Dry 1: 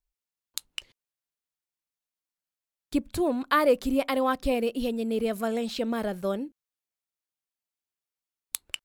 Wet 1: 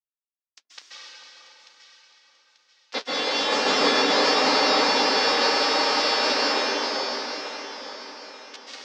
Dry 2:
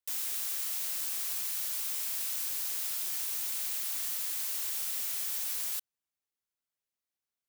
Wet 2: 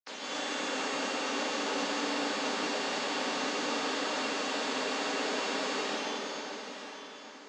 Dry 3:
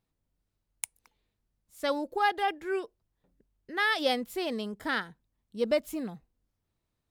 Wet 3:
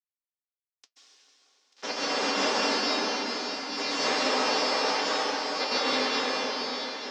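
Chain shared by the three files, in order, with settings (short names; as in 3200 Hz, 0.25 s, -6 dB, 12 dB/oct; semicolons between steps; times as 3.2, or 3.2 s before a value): sample sorter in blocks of 128 samples; gate with hold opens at -44 dBFS; spectral gate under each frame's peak -20 dB weak; sample leveller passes 5; flange 1.4 Hz, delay 3.8 ms, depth 9.5 ms, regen -60%; elliptic band-pass 270–5200 Hz, stop band 40 dB; echo with dull and thin repeats by turns 0.444 s, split 1400 Hz, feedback 60%, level -6 dB; plate-style reverb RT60 3.7 s, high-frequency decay 0.85×, pre-delay 0.12 s, DRR -8.5 dB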